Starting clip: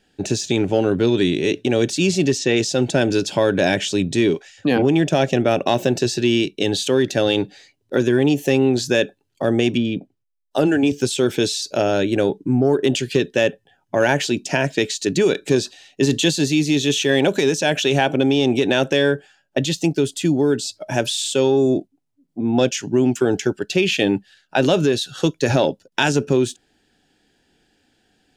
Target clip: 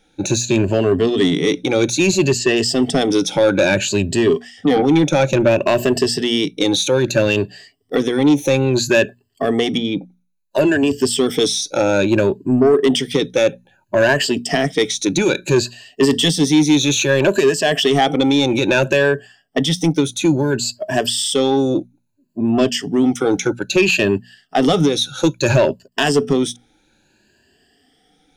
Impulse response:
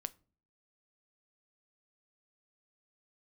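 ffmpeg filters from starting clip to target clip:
-af "afftfilt=real='re*pow(10,15/40*sin(2*PI*(1.4*log(max(b,1)*sr/1024/100)/log(2)-(0.6)*(pts-256)/sr)))':imag='im*pow(10,15/40*sin(2*PI*(1.4*log(max(b,1)*sr/1024/100)/log(2)-(0.6)*(pts-256)/sr)))':win_size=1024:overlap=0.75,asoftclip=type=tanh:threshold=0.398,bandreject=f=60:t=h:w=6,bandreject=f=120:t=h:w=6,bandreject=f=180:t=h:w=6,bandreject=f=240:t=h:w=6,volume=1.26"

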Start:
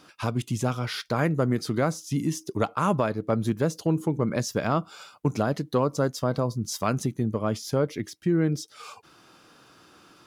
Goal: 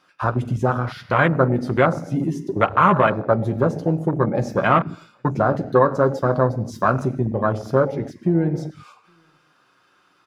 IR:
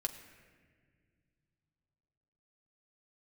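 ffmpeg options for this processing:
-filter_complex "[0:a]asoftclip=type=tanh:threshold=0.211,equalizer=f=1500:w=0.52:g=10,asplit=2[s0][s1];[s1]adelay=816.3,volume=0.0631,highshelf=f=4000:g=-18.4[s2];[s0][s2]amix=inputs=2:normalize=0[s3];[1:a]atrim=start_sample=2205,afade=t=out:st=0.33:d=0.01,atrim=end_sample=14994[s4];[s3][s4]afir=irnorm=-1:irlink=0,afwtdn=0.0631,volume=1.58"

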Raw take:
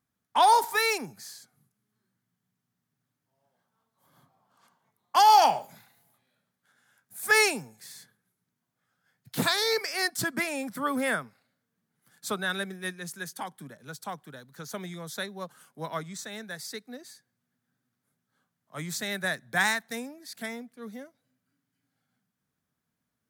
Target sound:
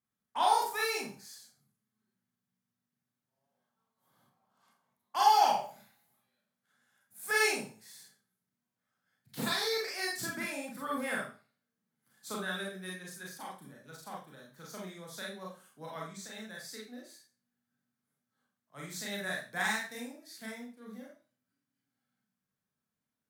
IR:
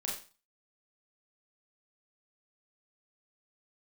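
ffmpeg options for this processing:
-filter_complex "[1:a]atrim=start_sample=2205[s0];[0:a][s0]afir=irnorm=-1:irlink=0,volume=0.376"

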